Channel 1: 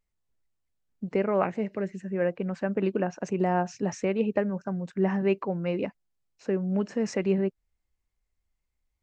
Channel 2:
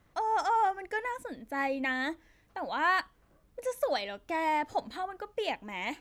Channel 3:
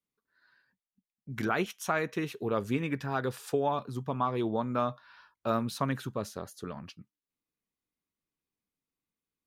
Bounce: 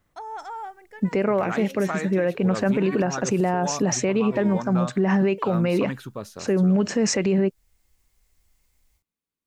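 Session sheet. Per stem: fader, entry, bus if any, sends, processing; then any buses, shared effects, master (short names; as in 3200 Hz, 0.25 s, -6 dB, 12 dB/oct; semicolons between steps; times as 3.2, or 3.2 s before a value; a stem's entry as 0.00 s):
+1.0 dB, 0.00 s, no send, high shelf 4600 Hz +9.5 dB; AGC gain up to 12.5 dB
-4.0 dB, 0.00 s, no send, auto duck -7 dB, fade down 0.95 s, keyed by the third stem
0.0 dB, 0.00 s, no send, dry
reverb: off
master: limiter -13 dBFS, peak gain reduction 12 dB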